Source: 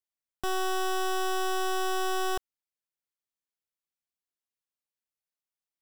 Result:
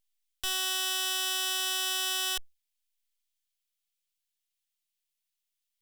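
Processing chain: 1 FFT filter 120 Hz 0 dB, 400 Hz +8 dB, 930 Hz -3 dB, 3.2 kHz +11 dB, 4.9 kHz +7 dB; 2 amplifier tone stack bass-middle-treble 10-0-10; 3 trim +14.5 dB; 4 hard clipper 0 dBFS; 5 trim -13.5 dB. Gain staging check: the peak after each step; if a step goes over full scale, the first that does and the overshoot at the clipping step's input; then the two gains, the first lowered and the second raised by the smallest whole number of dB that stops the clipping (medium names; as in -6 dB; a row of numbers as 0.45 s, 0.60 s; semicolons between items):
-16.5 dBFS, -16.0 dBFS, -1.5 dBFS, -1.5 dBFS, -15.0 dBFS; nothing clips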